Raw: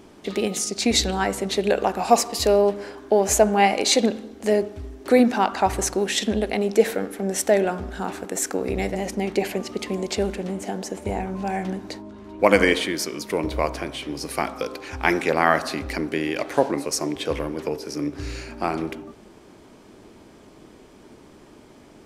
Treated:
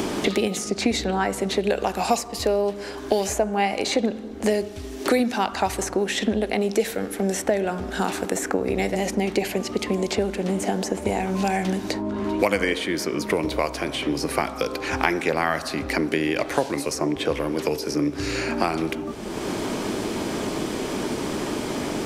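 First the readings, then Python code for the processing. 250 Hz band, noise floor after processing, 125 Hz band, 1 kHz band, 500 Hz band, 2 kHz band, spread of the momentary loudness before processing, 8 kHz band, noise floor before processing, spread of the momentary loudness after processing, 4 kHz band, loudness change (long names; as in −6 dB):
+1.0 dB, −34 dBFS, +1.5 dB, −2.0 dB, −1.5 dB, −0.5 dB, 12 LU, −3.5 dB, −49 dBFS, 5 LU, −1.5 dB, −1.5 dB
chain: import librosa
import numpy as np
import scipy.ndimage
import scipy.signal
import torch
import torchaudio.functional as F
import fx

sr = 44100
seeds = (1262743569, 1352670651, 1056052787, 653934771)

y = fx.band_squash(x, sr, depth_pct=100)
y = y * librosa.db_to_amplitude(-1.0)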